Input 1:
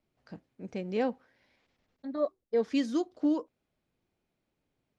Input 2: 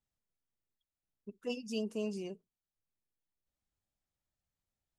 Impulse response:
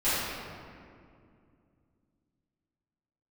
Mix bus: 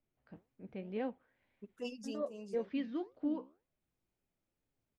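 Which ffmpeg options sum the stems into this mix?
-filter_complex "[0:a]lowpass=f=3300:w=0.5412,lowpass=f=3300:w=1.3066,lowshelf=f=69:g=7.5,flanger=delay=7.2:depth=8.5:regen=78:speed=1.9:shape=sinusoidal,volume=0.596,asplit=2[s0][s1];[1:a]adelay=350,volume=0.631[s2];[s1]apad=whole_len=235281[s3];[s2][s3]sidechaincompress=threshold=0.00631:ratio=8:attack=12:release=504[s4];[s0][s4]amix=inputs=2:normalize=0"

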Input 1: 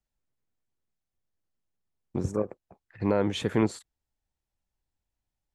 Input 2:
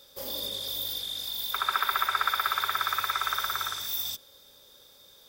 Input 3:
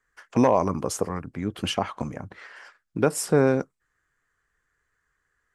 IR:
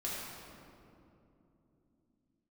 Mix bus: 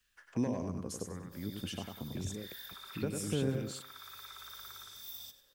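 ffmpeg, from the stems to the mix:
-filter_complex "[0:a]acompressor=threshold=0.0355:ratio=6,highshelf=f=1800:t=q:w=3:g=14,acrossover=split=450[s0][s1];[s1]acompressor=threshold=0.00794:ratio=4[s2];[s0][s2]amix=inputs=2:normalize=0,volume=0.841[s3];[1:a]adelay=1150,volume=0.188,asplit=2[s4][s5];[s5]volume=0.2[s6];[2:a]equalizer=f=1700:t=o:w=0.45:g=6.5,volume=0.237,asplit=3[s7][s8][s9];[s8]volume=0.531[s10];[s9]apad=whole_len=283771[s11];[s4][s11]sidechaincompress=threshold=0.0141:ratio=8:attack=9.6:release=755[s12];[s3][s12]amix=inputs=2:normalize=0,alimiter=level_in=2.37:limit=0.0631:level=0:latency=1:release=21,volume=0.422,volume=1[s13];[s6][s10]amix=inputs=2:normalize=0,aecho=0:1:97|194|291|388:1|0.31|0.0961|0.0298[s14];[s7][s13][s14]amix=inputs=3:normalize=0,lowshelf=f=210:g=3,acrossover=split=420|3000[s15][s16][s17];[s16]acompressor=threshold=0.00126:ratio=2[s18];[s15][s18][s17]amix=inputs=3:normalize=0"

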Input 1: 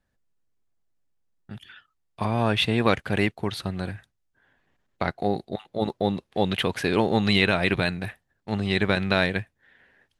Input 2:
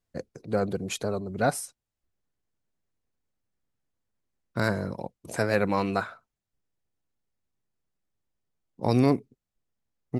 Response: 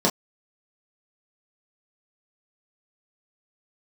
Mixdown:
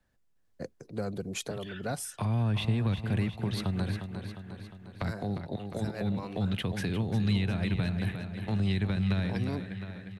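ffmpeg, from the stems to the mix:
-filter_complex "[0:a]acrossover=split=200[s0][s1];[s1]acompressor=threshold=0.02:ratio=10[s2];[s0][s2]amix=inputs=2:normalize=0,volume=1.19,asplit=3[s3][s4][s5];[s4]volume=0.335[s6];[1:a]adelay=450,volume=0.708[s7];[s5]apad=whole_len=469320[s8];[s7][s8]sidechaincompress=threshold=0.0178:ratio=5:attack=5.3:release=1160[s9];[s6]aecho=0:1:355|710|1065|1420|1775|2130|2485|2840|3195:1|0.58|0.336|0.195|0.113|0.0656|0.0381|0.0221|0.0128[s10];[s3][s9][s10]amix=inputs=3:normalize=0,acrossover=split=190|3000[s11][s12][s13];[s12]acompressor=threshold=0.0224:ratio=6[s14];[s11][s14][s13]amix=inputs=3:normalize=0"

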